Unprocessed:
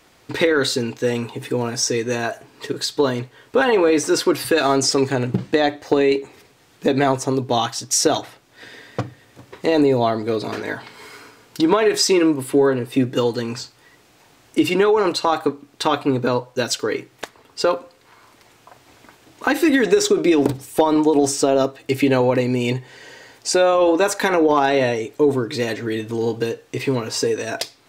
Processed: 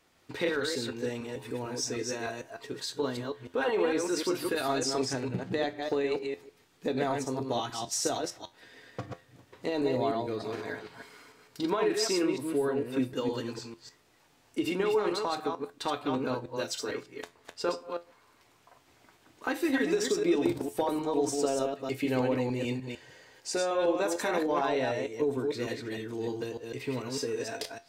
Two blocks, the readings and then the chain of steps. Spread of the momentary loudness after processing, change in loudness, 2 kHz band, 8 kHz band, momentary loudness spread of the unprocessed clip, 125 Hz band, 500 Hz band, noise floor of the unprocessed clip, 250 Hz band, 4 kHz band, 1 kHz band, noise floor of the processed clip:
13 LU, -12.0 dB, -12.0 dB, -12.0 dB, 12 LU, -13.0 dB, -11.5 dB, -54 dBFS, -12.0 dB, -12.0 dB, -12.0 dB, -64 dBFS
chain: chunks repeated in reverse 151 ms, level -3.5 dB; feedback comb 86 Hz, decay 0.23 s, harmonics all, mix 60%; trim -9 dB

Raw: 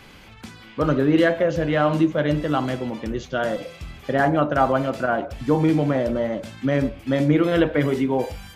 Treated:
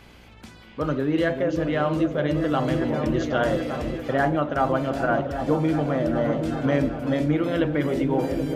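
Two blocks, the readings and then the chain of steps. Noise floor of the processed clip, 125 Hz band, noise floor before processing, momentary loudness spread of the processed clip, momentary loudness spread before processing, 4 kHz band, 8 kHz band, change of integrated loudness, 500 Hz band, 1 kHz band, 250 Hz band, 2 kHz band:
-48 dBFS, -2.0 dB, -45 dBFS, 2 LU, 9 LU, -3.0 dB, no reading, -2.5 dB, -2.0 dB, -2.0 dB, -2.0 dB, -2.5 dB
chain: mains buzz 60 Hz, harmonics 16, -49 dBFS -4 dB/octave; delay with an opening low-pass 388 ms, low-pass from 400 Hz, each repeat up 1 oct, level -6 dB; gain riding within 4 dB 0.5 s; trim -3 dB

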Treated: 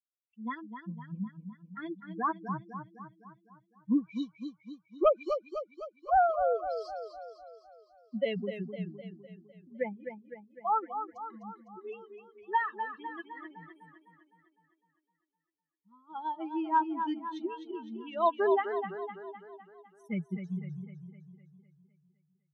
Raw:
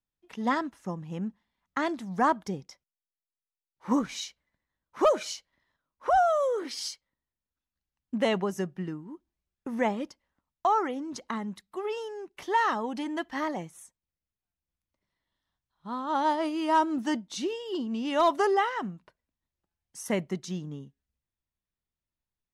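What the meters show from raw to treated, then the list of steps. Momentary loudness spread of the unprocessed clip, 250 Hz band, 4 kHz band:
16 LU, -5.0 dB, -13.0 dB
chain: expander on every frequency bin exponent 3; distance through air 390 m; modulated delay 254 ms, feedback 54%, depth 69 cents, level -8 dB; trim +3 dB

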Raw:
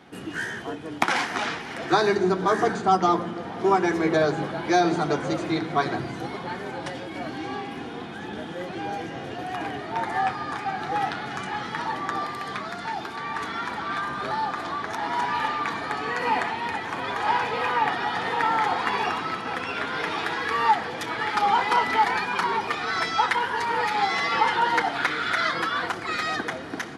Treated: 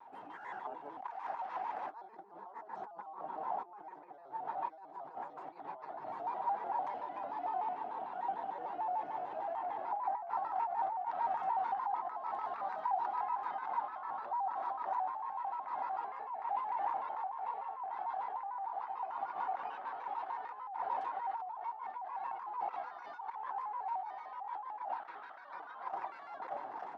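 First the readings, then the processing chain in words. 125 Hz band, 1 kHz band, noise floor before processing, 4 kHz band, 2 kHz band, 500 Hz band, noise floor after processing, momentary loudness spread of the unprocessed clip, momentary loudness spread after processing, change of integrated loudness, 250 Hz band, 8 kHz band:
under -30 dB, -11.0 dB, -36 dBFS, under -30 dB, -25.5 dB, -18.5 dB, -53 dBFS, 11 LU, 11 LU, -14.0 dB, -29.5 dB, under -35 dB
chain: compressor with a negative ratio -33 dBFS, ratio -1; band-pass filter 860 Hz, Q 10; vibrato with a chosen wave square 6.7 Hz, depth 160 cents; trim +2 dB

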